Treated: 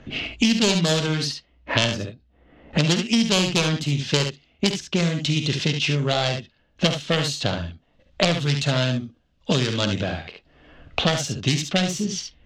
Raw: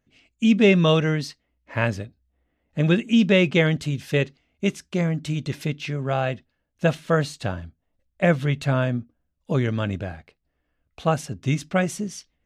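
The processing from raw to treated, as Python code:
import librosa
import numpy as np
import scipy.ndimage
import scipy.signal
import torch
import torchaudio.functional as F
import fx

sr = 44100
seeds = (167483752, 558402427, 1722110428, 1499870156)

p1 = fx.self_delay(x, sr, depth_ms=0.3)
p2 = fx.band_shelf(p1, sr, hz=4600.0, db=10.0, octaves=1.7)
p3 = fx.env_lowpass(p2, sr, base_hz=2000.0, full_db=-17.0)
p4 = p3 + fx.room_early_taps(p3, sr, ms=(48, 70), db=(-11.5, -8.0), dry=0)
p5 = fx.band_squash(p4, sr, depth_pct=100)
y = p5 * 10.0 ** (-1.5 / 20.0)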